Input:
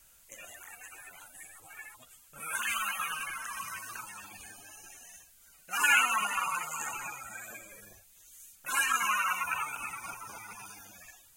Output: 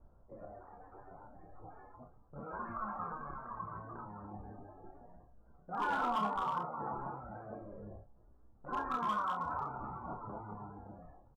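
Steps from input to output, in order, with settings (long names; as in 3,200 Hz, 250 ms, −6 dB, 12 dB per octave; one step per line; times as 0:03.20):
Bessel low-pass filter 590 Hz, order 8
hum removal 276.9 Hz, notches 30
hard clipping −39 dBFS, distortion −18 dB
on a send: ambience of single reflections 29 ms −4.5 dB, 47 ms −11 dB
on the sum: level +9 dB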